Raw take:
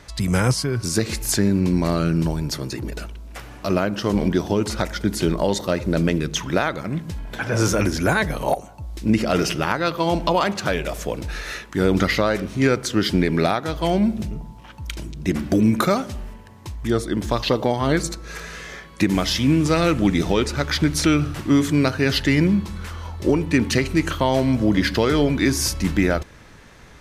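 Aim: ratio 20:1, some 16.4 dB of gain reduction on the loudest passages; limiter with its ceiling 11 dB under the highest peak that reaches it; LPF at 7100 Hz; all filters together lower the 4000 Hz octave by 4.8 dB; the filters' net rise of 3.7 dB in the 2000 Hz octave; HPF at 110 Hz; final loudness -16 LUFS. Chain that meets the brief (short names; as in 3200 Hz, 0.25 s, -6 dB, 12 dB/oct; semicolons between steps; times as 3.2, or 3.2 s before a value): HPF 110 Hz; LPF 7100 Hz; bell 2000 Hz +6.5 dB; bell 4000 Hz -8 dB; compressor 20:1, threshold -29 dBFS; gain +20.5 dB; limiter -5 dBFS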